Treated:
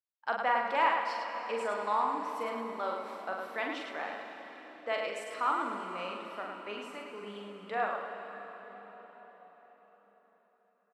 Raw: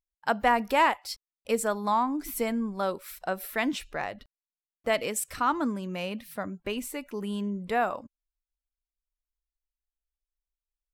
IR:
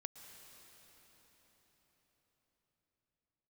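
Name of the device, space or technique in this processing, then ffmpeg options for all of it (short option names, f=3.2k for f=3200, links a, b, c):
station announcement: -filter_complex "[0:a]highpass=410,lowpass=4k,equalizer=f=1.2k:t=o:w=0.53:g=4,aecho=1:1:43.73|105:0.631|0.562[a];[1:a]atrim=start_sample=2205[b];[a][b]afir=irnorm=-1:irlink=0,volume=-2.5dB"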